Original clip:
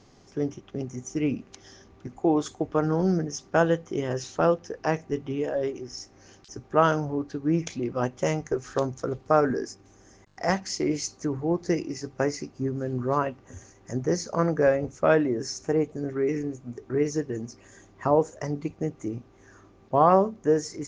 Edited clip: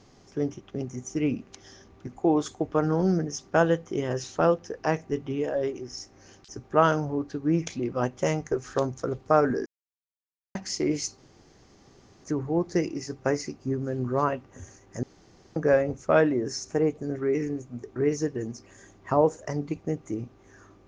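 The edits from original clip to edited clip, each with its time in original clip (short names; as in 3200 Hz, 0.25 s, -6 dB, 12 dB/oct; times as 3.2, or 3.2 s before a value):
9.66–10.55 mute
11.18 insert room tone 1.06 s
13.97–14.5 room tone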